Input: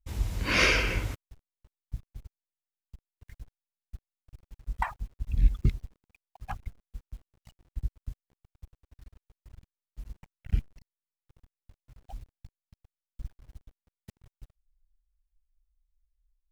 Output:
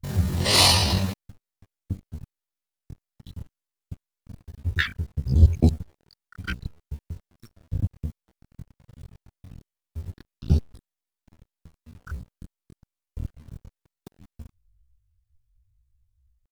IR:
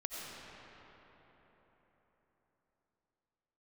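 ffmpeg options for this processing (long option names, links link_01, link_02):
-af "asetrate=83250,aresample=44100,atempo=0.529732,volume=6.5dB"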